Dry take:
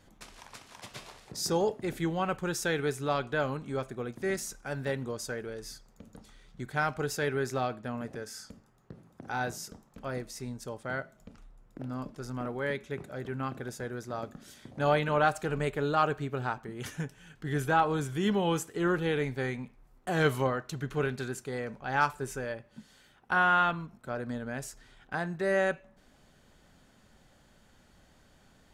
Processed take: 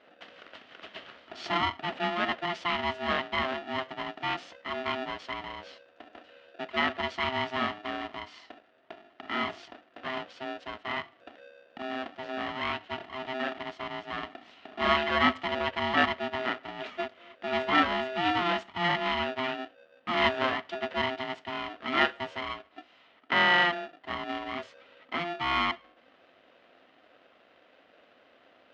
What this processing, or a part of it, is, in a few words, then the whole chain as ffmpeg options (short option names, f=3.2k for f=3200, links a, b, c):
ring modulator pedal into a guitar cabinet: -af "aeval=exprs='val(0)*sgn(sin(2*PI*520*n/s))':c=same,highpass=110,equalizer=f=130:t=q:w=4:g=-10,equalizer=f=250:t=q:w=4:g=6,equalizer=f=650:t=q:w=4:g=7,equalizer=f=1.3k:t=q:w=4:g=5,equalizer=f=1.9k:t=q:w=4:g=6,equalizer=f=3k:t=q:w=4:g=8,lowpass=f=4k:w=0.5412,lowpass=f=4k:w=1.3066,volume=-2.5dB"